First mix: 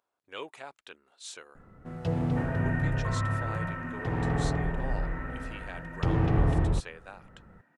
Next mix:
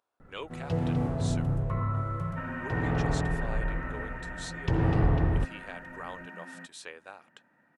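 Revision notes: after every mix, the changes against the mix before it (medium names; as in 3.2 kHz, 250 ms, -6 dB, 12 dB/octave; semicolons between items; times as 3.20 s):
first sound: entry -1.35 s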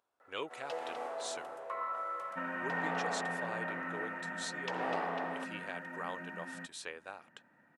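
first sound: add high-pass 550 Hz 24 dB/octave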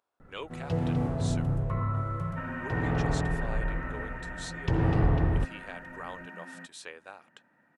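first sound: remove high-pass 550 Hz 24 dB/octave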